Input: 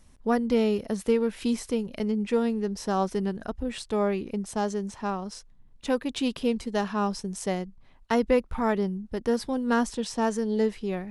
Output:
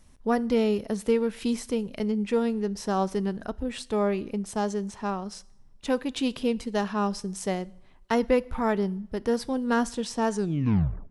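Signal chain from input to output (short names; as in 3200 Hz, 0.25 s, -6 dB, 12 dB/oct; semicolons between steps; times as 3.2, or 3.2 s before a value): tape stop at the end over 0.78 s; two-slope reverb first 0.69 s, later 2.7 s, from -26 dB, DRR 19.5 dB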